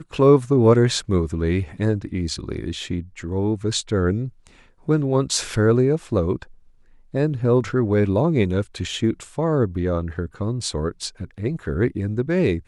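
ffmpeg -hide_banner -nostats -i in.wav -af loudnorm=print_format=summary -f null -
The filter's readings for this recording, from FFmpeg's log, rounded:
Input Integrated:    -22.2 LUFS
Input True Peak:      -3.2 dBTP
Input LRA:             3.2 LU
Input Threshold:     -32.4 LUFS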